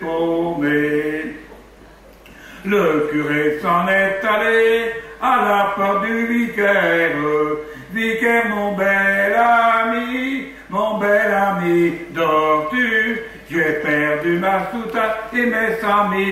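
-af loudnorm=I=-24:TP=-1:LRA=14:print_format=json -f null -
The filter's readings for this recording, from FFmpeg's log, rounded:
"input_i" : "-17.5",
"input_tp" : "-4.3",
"input_lra" : "1.9",
"input_thresh" : "-27.8",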